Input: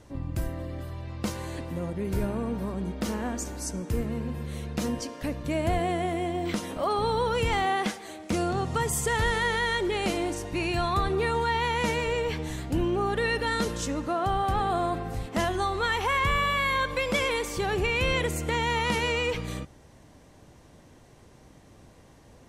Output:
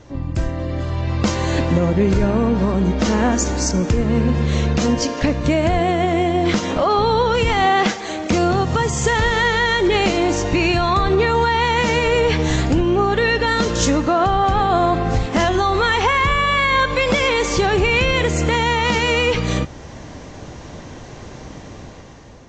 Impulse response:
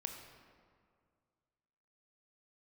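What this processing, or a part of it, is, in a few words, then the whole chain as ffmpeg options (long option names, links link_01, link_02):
low-bitrate web radio: -af "dynaudnorm=framelen=270:gausssize=7:maxgain=10dB,alimiter=limit=-16dB:level=0:latency=1:release=423,volume=8.5dB" -ar 16000 -c:a aac -b:a 32k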